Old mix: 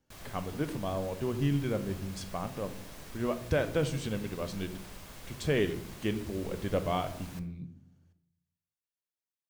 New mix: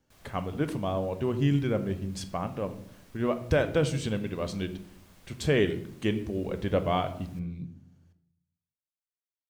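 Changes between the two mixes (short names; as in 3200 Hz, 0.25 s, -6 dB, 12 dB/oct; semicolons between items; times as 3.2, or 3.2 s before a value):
speech +4.0 dB; background -10.0 dB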